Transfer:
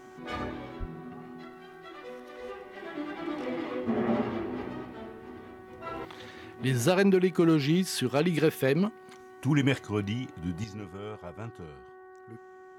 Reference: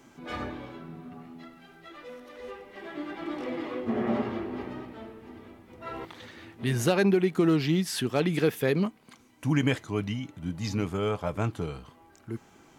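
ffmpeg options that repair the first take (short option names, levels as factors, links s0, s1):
-filter_complex "[0:a]bandreject=f=373.4:t=h:w=4,bandreject=f=746.8:t=h:w=4,bandreject=f=1120.2:t=h:w=4,bandreject=f=1493.6:t=h:w=4,bandreject=f=1867:t=h:w=4,asplit=3[s0][s1][s2];[s0]afade=t=out:st=0.79:d=0.02[s3];[s1]highpass=f=140:w=0.5412,highpass=f=140:w=1.3066,afade=t=in:st=0.79:d=0.02,afade=t=out:st=0.91:d=0.02[s4];[s2]afade=t=in:st=0.91:d=0.02[s5];[s3][s4][s5]amix=inputs=3:normalize=0,asetnsamples=n=441:p=0,asendcmd='10.64 volume volume 11.5dB',volume=1"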